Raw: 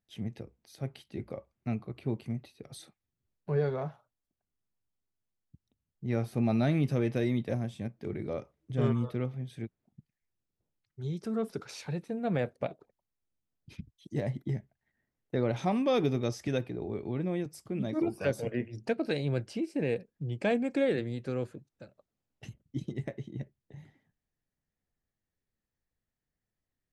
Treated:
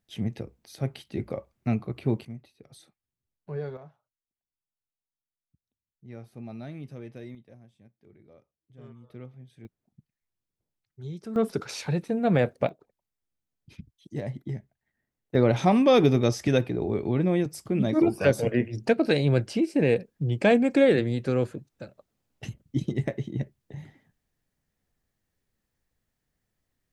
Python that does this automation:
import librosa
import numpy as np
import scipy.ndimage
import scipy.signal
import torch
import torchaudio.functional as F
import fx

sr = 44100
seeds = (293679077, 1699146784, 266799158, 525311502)

y = fx.gain(x, sr, db=fx.steps((0.0, 7.0), (2.25, -5.0), (3.77, -12.5), (7.35, -20.0), (9.1, -10.0), (9.65, -2.0), (11.36, 8.0), (12.69, -0.5), (15.35, 8.5)))